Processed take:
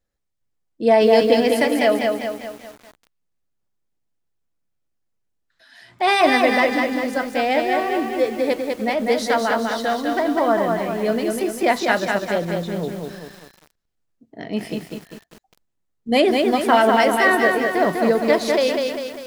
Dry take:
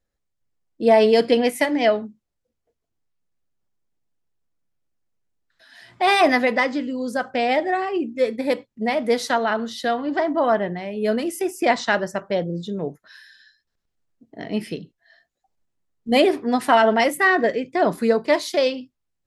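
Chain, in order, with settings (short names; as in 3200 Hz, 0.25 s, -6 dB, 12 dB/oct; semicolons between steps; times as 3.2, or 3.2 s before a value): lo-fi delay 0.199 s, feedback 55%, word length 7-bit, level -3.5 dB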